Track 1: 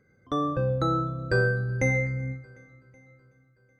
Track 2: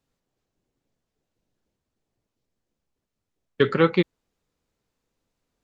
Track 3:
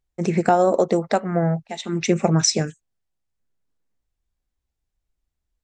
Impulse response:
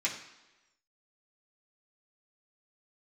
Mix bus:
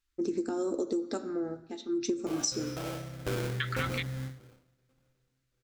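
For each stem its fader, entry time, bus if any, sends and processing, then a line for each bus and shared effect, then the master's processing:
0:02.82 −12.5 dB → 0:03.50 −5.5 dB → 0:04.48 −5.5 dB → 0:04.69 −18 dB, 1.95 s, no send, sample-rate reduction 1,900 Hz, jitter 20%
−2.0 dB, 0.00 s, no send, high-pass filter 1,300 Hz 24 dB per octave
+1.0 dB, 0.00 s, send −9 dB, low-pass that shuts in the quiet parts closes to 1,600 Hz, open at −15 dBFS; drawn EQ curve 100 Hz 0 dB, 170 Hz −26 dB, 260 Hz +6 dB, 720 Hz −21 dB, 1,400 Hz −10 dB, 2,100 Hz −25 dB, 4,800 Hz −2 dB, 9,900 Hz −8 dB; amplitude modulation by smooth noise, depth 60%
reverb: on, RT60 1.1 s, pre-delay 3 ms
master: downward compressor 6 to 1, threshold −28 dBFS, peak gain reduction 10.5 dB

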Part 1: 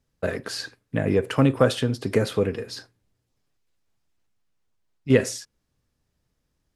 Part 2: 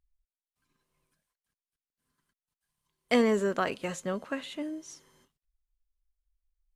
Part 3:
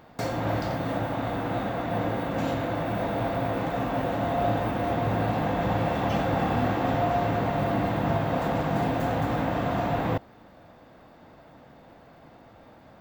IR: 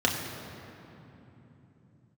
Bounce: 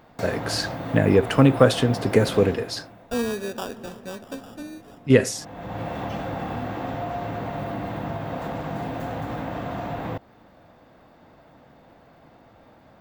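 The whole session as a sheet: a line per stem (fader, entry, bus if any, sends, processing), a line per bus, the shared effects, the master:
−0.5 dB, 0.00 s, no send, automatic gain control gain up to 7 dB
−3.5 dB, 0.00 s, send −24 dB, de-essing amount 100%; decimation without filtering 21×
−1.0 dB, 0.00 s, no send, downward compressor 2.5 to 1, threshold −27 dBFS, peak gain reduction 5 dB; automatic ducking −21 dB, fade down 0.70 s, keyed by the second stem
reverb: on, RT60 3.3 s, pre-delay 3 ms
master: no processing

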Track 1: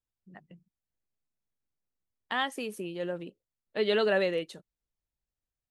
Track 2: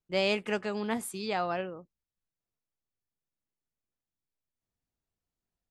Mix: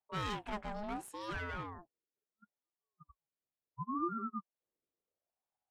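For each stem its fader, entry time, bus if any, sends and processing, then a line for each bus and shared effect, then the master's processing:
−1.0 dB, 0.00 s, no send, Butterworth low-pass 900 Hz 96 dB per octave; output level in coarse steps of 16 dB; every bin expanded away from the loudest bin 4 to 1
−3.0 dB, 0.00 s, no send, asymmetric clip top −33.5 dBFS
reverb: not used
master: high-shelf EQ 3,700 Hz −8 dB; ring modulator whose carrier an LFO sweeps 590 Hz, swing 35%, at 0.72 Hz

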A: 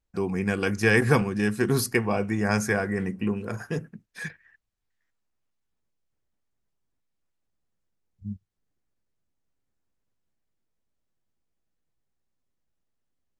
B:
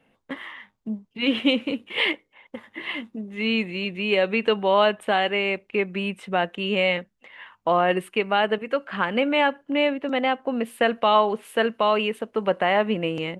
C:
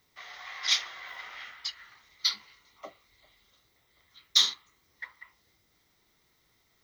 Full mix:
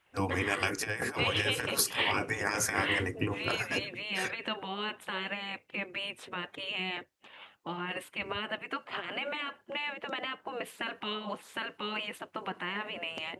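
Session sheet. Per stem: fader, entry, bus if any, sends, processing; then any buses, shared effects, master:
+2.5 dB, 0.00 s, no bus, no send, compressor whose output falls as the input rises −25 dBFS, ratio −0.5
0.0 dB, 0.00 s, bus A, no send, no processing
muted
bus A: 0.0 dB, brickwall limiter −18 dBFS, peak gain reduction 11 dB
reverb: not used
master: high-pass filter 78 Hz; gate on every frequency bin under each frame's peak −10 dB weak

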